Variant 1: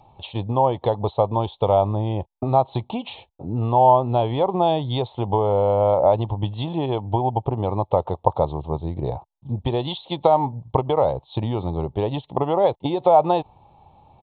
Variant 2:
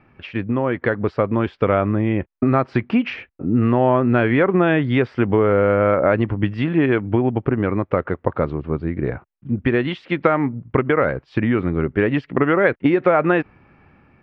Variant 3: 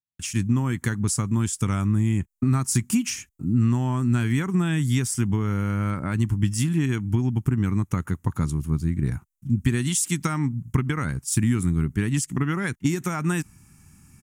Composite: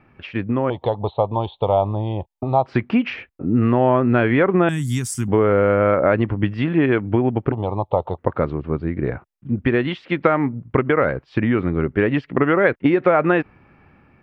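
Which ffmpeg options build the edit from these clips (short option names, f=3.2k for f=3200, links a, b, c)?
-filter_complex "[0:a]asplit=2[a][b];[1:a]asplit=4[c][d][e][f];[c]atrim=end=0.702[g];[a]atrim=start=0.698:end=2.662[h];[d]atrim=start=2.658:end=4.692[i];[2:a]atrim=start=4.688:end=5.282[j];[e]atrim=start=5.278:end=7.522[k];[b]atrim=start=7.518:end=8.182[l];[f]atrim=start=8.178[m];[g][h]acrossfade=d=0.004:c1=hsin:c2=hsin[n];[n][i]acrossfade=d=0.004:c1=hsin:c2=hsin[o];[o][j]acrossfade=d=0.004:c1=hsin:c2=hsin[p];[p][k]acrossfade=d=0.004:c1=hsin:c2=hsin[q];[q][l]acrossfade=d=0.004:c1=hsin:c2=hsin[r];[r][m]acrossfade=d=0.004:c1=hsin:c2=hsin"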